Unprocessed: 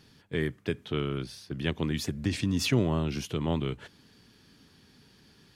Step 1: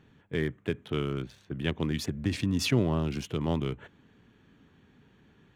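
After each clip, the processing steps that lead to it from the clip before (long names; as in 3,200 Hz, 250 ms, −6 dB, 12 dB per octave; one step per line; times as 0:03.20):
adaptive Wiener filter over 9 samples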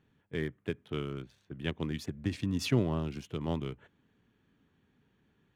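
expander for the loud parts 1.5 to 1, over −39 dBFS
level −1.5 dB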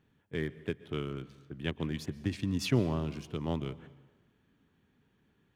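dense smooth reverb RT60 1.2 s, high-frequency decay 0.85×, pre-delay 110 ms, DRR 17.5 dB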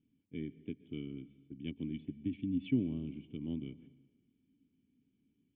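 formant resonators in series i
level +2 dB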